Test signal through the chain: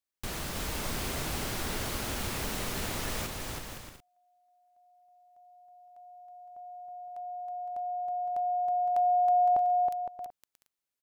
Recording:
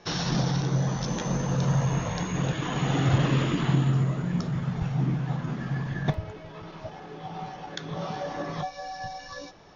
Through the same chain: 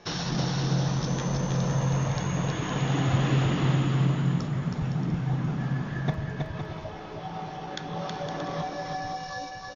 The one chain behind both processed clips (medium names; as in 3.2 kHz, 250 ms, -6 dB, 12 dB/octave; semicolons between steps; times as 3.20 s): in parallel at -1.5 dB: compression, threshold -35 dBFS; on the sum: bouncing-ball echo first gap 320 ms, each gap 0.6×, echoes 5; trim -4.5 dB